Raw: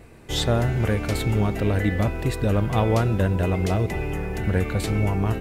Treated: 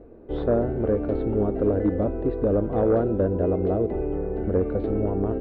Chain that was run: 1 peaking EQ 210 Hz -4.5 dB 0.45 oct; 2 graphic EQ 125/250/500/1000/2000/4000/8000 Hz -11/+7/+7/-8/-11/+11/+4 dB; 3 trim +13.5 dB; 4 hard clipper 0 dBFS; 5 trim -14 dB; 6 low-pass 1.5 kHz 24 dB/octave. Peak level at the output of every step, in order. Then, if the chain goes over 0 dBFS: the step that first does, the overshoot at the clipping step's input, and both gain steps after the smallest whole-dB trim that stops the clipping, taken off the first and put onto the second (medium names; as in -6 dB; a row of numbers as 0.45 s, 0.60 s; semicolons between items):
-10.5 dBFS, -6.5 dBFS, +7.0 dBFS, 0.0 dBFS, -14.0 dBFS, -13.0 dBFS; step 3, 7.0 dB; step 3 +6.5 dB, step 5 -7 dB